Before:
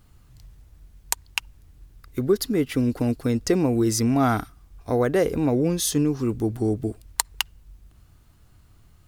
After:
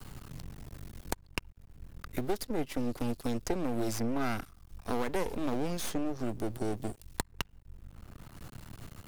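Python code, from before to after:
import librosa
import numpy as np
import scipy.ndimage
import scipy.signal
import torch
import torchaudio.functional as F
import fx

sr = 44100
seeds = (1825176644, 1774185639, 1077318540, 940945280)

y = np.maximum(x, 0.0)
y = fx.band_squash(y, sr, depth_pct=70)
y = y * 10.0 ** (-6.0 / 20.0)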